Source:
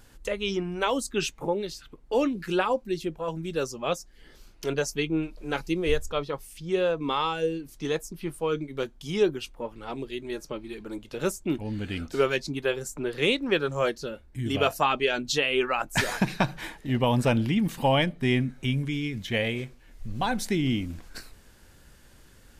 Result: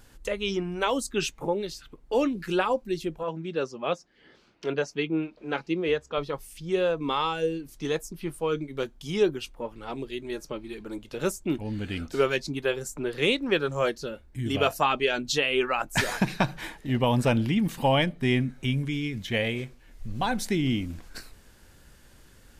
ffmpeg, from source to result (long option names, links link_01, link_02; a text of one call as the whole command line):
ffmpeg -i in.wav -filter_complex "[0:a]asettb=1/sr,asplit=3[link_01][link_02][link_03];[link_01]atrim=end=3.234[link_04];[link_02]atrim=start=3.23:end=6.18,asetpts=PTS-STARTPTS,afade=type=in:duration=0.004:curve=qsin,afade=type=out:start_time=2.946:duration=0.004:curve=qsin,highpass=150,lowpass=3600[link_05];[link_03]atrim=start=6.176[link_06];[link_04][link_05]acrossfade=duration=0.004:curve1=hsin:curve2=qsin[link_07];[link_07][link_06]acrossfade=duration=0.004:curve1=qsin:curve2=hsin" out.wav